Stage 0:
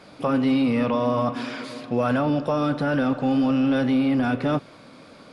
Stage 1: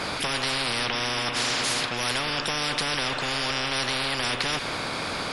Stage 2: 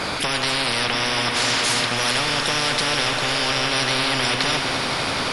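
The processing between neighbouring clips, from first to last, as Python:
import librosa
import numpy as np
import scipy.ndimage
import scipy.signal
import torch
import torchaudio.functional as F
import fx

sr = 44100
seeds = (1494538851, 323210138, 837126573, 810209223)

y1 = fx.spectral_comp(x, sr, ratio=10.0)
y2 = fx.echo_swell(y1, sr, ms=85, loudest=8, wet_db=-16)
y2 = y2 * librosa.db_to_amplitude(4.5)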